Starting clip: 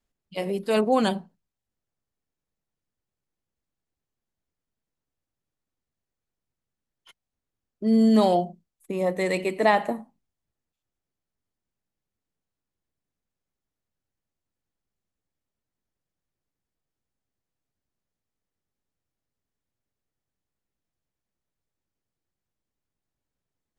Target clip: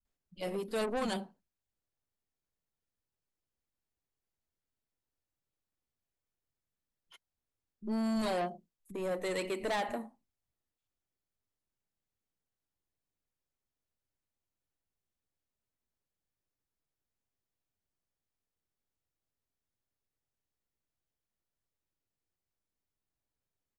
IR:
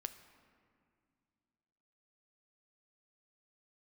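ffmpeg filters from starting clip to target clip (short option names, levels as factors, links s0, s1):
-filter_complex "[0:a]acrossover=split=4100[s0][s1];[s0]asoftclip=type=tanh:threshold=0.0596[s2];[s2][s1]amix=inputs=2:normalize=0,acrossover=split=190[s3][s4];[s4]adelay=50[s5];[s3][s5]amix=inputs=2:normalize=0,volume=0.562"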